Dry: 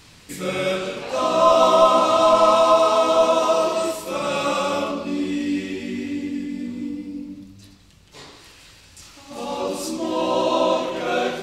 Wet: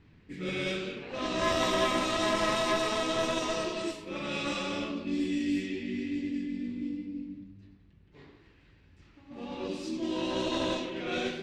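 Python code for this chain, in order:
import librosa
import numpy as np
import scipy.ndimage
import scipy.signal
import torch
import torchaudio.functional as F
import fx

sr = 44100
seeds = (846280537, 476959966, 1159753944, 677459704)

y = fx.cheby_harmonics(x, sr, harmonics=(4,), levels_db=(-18,), full_scale_db=-2.5)
y = fx.band_shelf(y, sr, hz=830.0, db=-9.5, octaves=1.7)
y = fx.env_lowpass(y, sr, base_hz=1200.0, full_db=-18.5)
y = y * librosa.db_to_amplitude(-6.0)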